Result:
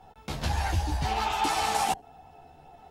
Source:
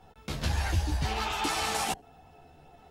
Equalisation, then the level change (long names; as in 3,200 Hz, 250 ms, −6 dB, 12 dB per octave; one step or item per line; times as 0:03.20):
parametric band 820 Hz +7.5 dB 0.51 octaves
0.0 dB